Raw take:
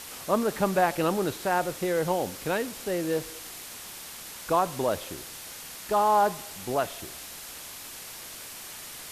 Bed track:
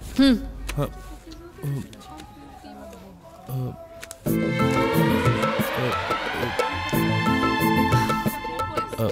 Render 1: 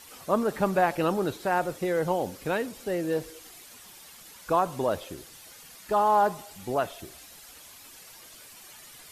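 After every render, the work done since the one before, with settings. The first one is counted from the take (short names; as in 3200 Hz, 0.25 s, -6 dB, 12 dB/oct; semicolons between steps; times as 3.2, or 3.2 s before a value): denoiser 10 dB, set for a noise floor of -42 dBFS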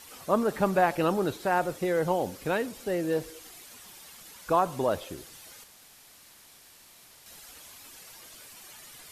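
5.64–7.26 room tone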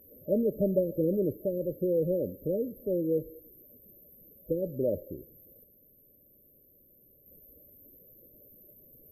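FFT band-reject 620–12000 Hz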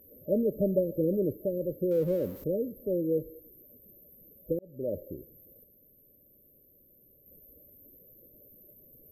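1.91–2.44 zero-crossing step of -45.5 dBFS; 4.59–5.05 fade in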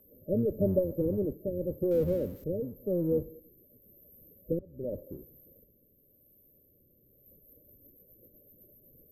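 octaver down 1 oct, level -5 dB; rotary speaker horn 0.9 Hz, later 8 Hz, at 7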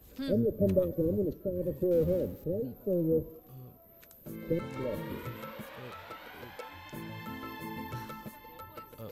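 add bed track -20.5 dB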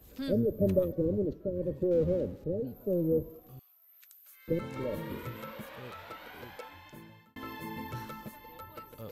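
0.92–2.67 air absorption 67 m; 3.59–4.48 Bessel high-pass 2000 Hz, order 4; 6.49–7.36 fade out linear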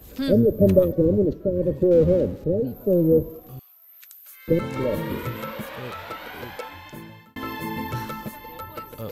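gain +10.5 dB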